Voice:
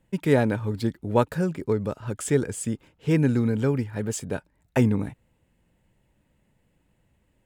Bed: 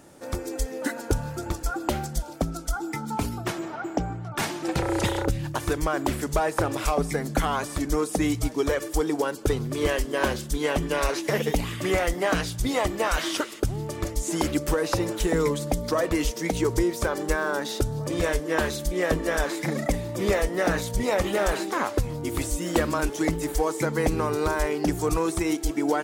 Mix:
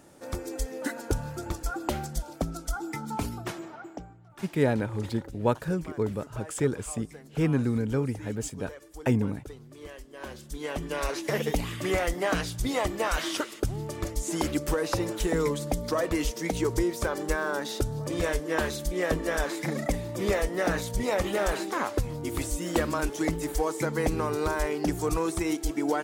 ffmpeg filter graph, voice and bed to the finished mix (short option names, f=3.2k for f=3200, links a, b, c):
-filter_complex "[0:a]adelay=4300,volume=-4dB[a];[1:a]volume=13dB,afade=t=out:st=3.25:d=0.88:silence=0.158489,afade=t=in:st=10.14:d=1.26:silence=0.149624[b];[a][b]amix=inputs=2:normalize=0"